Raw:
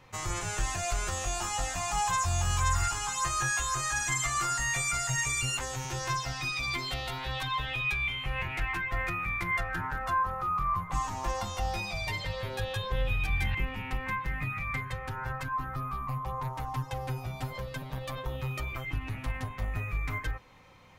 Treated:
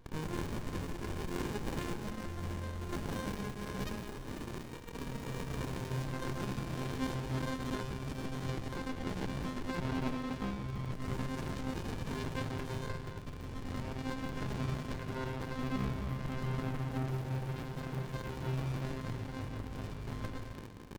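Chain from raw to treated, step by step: 3.99–4.88 s: fifteen-band graphic EQ 1 kHz -5 dB, 2.5 kHz +11 dB, 10 kHz +5 dB; loudspeakers at several distances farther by 37 m -8 dB, 70 m -6 dB; compressor with a negative ratio -32 dBFS, ratio -1; hum notches 60/120 Hz; reverberation RT60 2.0 s, pre-delay 4 ms, DRR 4 dB; crackle 190 per s -38 dBFS; high-pass 64 Hz; bass shelf 170 Hz -9 dB; sliding maximum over 65 samples

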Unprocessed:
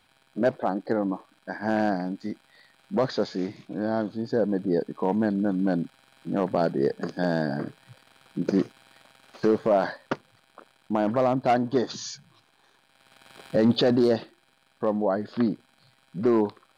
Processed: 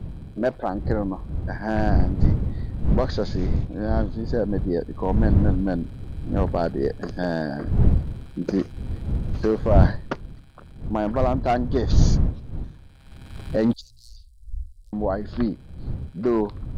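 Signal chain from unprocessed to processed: wind noise 100 Hz -24 dBFS; 13.73–14.93 s: inverse Chebyshev band-stop 190–1900 Hz, stop band 60 dB

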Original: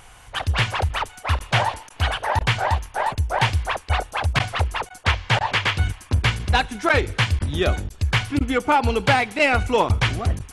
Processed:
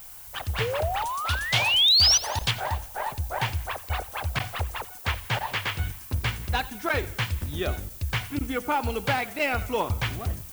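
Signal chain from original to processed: 0.60–2.18 s: painted sound rise 430–6100 Hz -21 dBFS; 1.02–2.51 s: resonant high shelf 2.6 kHz +9 dB, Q 1.5; added noise violet -36 dBFS; modulated delay 88 ms, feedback 46%, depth 134 cents, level -18.5 dB; trim -8 dB

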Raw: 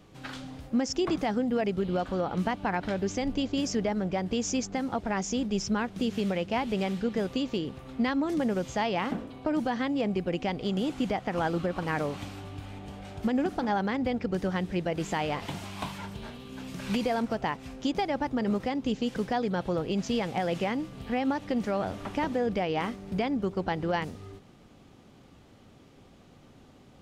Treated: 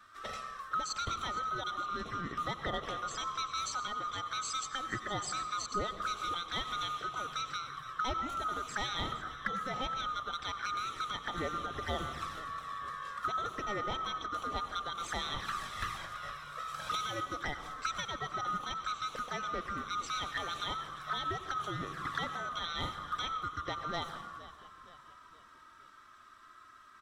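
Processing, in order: split-band scrambler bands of 1 kHz; 17.24–17.70 s: band-stop 1.8 kHz, Q 5.5; touch-sensitive flanger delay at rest 3.6 ms, full sweep at -27 dBFS; in parallel at -7.5 dB: hard clipper -31 dBFS, distortion -16 dB; 5.66–6.34 s: on the sum: phase dispersion highs, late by 62 ms, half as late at 990 Hz; frequency-shifting echo 466 ms, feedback 49%, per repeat -71 Hz, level -16.5 dB; reverberation RT60 1.1 s, pre-delay 84 ms, DRR 10.5 dB; trim -2.5 dB

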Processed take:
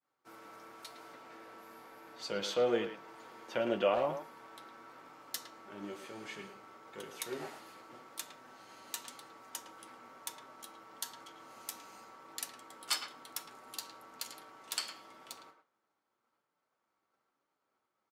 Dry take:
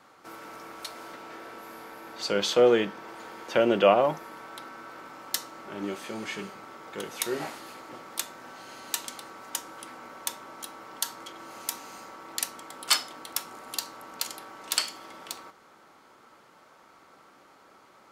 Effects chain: expander -44 dBFS; flange 0.97 Hz, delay 6.4 ms, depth 3.6 ms, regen -41%; speakerphone echo 110 ms, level -8 dB; trim -6.5 dB

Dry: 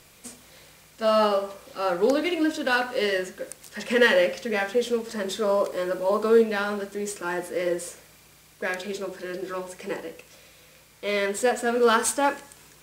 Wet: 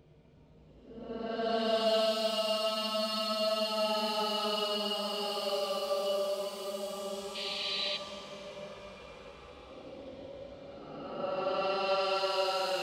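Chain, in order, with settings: level-controlled noise filter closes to 520 Hz, open at -20 dBFS; resonant high shelf 2.3 kHz +10.5 dB, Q 1.5; compression 6:1, threshold -31 dBFS, peak gain reduction 19 dB; Paulstretch 13×, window 0.10 s, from 0.91 s; reverberation RT60 0.95 s, pre-delay 37 ms, DRR 6.5 dB; time-frequency box 7.35–7.97 s, 1.8–4.8 kHz +12 dB

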